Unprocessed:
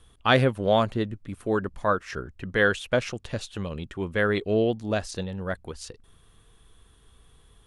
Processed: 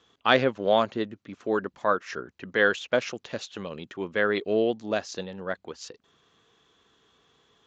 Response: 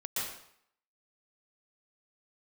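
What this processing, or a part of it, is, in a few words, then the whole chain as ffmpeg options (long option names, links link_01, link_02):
Bluetooth headset: -af "highpass=240,aresample=16000,aresample=44100" -ar 16000 -c:a sbc -b:a 64k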